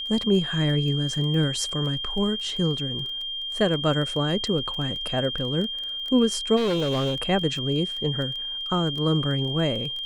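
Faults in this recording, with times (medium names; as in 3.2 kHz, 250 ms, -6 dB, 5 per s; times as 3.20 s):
crackle 13 per s -30 dBFS
whine 3.2 kHz -29 dBFS
6.56–7.22 s: clipped -20.5 dBFS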